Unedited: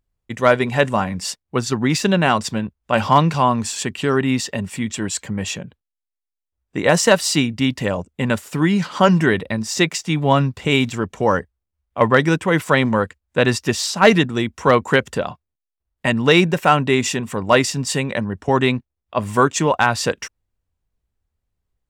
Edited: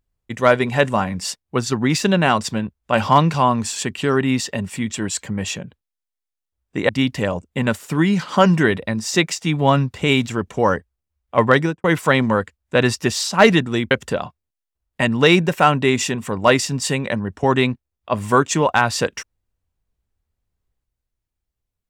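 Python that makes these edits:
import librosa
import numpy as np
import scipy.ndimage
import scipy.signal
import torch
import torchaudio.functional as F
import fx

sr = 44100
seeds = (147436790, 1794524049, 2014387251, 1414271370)

y = fx.studio_fade_out(x, sr, start_s=12.2, length_s=0.27)
y = fx.edit(y, sr, fx.cut(start_s=6.89, length_s=0.63),
    fx.cut(start_s=14.54, length_s=0.42), tone=tone)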